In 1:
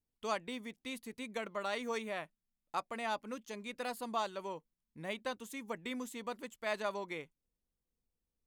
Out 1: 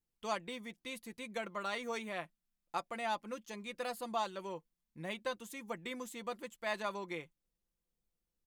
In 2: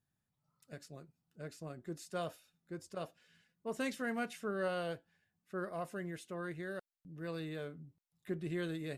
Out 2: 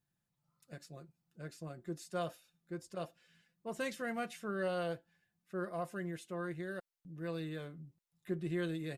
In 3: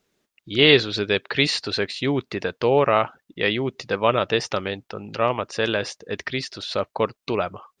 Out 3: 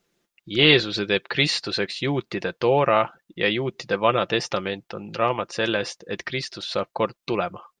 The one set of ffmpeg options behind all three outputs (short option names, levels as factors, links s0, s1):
-af "aecho=1:1:5.8:0.43,volume=0.891"